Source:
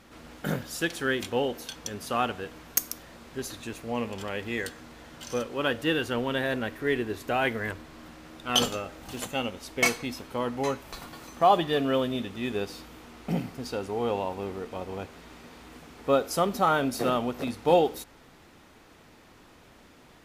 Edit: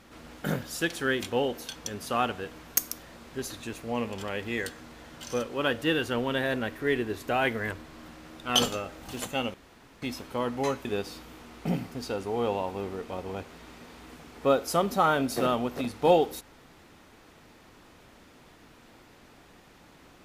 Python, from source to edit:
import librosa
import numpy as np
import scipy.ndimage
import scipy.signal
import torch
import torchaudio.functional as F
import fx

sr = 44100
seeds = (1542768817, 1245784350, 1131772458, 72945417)

y = fx.edit(x, sr, fx.room_tone_fill(start_s=9.54, length_s=0.48),
    fx.cut(start_s=10.85, length_s=1.63), tone=tone)